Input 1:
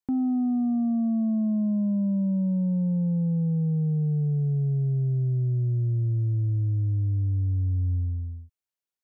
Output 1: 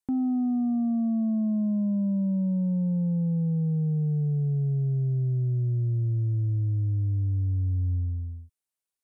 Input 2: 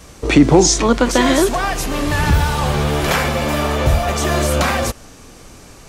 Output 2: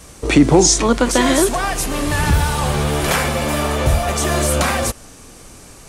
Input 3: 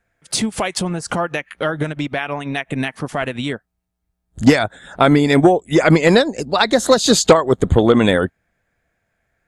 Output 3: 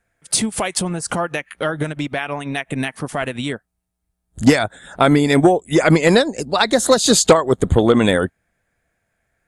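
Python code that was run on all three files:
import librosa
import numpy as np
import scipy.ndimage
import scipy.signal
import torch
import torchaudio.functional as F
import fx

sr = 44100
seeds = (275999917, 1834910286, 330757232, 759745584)

y = fx.peak_eq(x, sr, hz=9500.0, db=8.0, octaves=0.68)
y = y * 10.0 ** (-1.0 / 20.0)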